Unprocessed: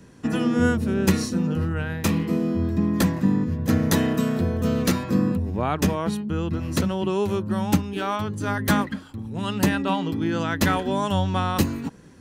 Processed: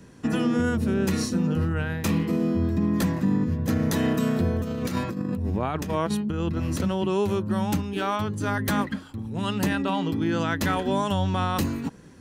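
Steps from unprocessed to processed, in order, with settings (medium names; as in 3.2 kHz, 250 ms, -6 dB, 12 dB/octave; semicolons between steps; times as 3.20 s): peak limiter -14.5 dBFS, peak gain reduction 8.5 dB; 4.62–6.80 s: compressor with a negative ratio -26 dBFS, ratio -0.5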